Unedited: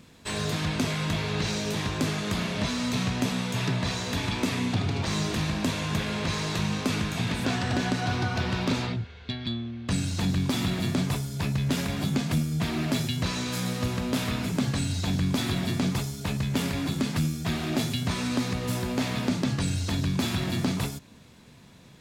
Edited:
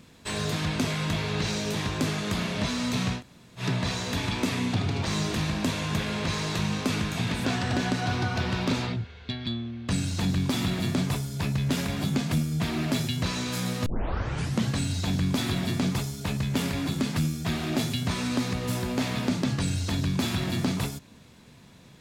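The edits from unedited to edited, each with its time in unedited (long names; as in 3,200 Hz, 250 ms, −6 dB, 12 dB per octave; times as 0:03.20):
0:03.18–0:03.61: fill with room tone, crossfade 0.10 s
0:13.86: tape start 0.84 s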